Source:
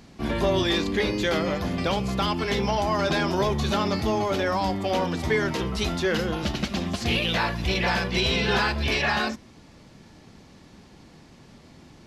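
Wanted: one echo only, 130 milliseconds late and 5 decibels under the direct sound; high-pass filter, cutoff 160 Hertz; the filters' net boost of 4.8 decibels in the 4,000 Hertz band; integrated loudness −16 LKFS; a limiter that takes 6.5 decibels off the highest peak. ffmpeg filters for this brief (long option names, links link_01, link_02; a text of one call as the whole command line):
ffmpeg -i in.wav -af "highpass=160,equalizer=frequency=4000:width_type=o:gain=6,alimiter=limit=-16.5dB:level=0:latency=1,aecho=1:1:130:0.562,volume=8.5dB" out.wav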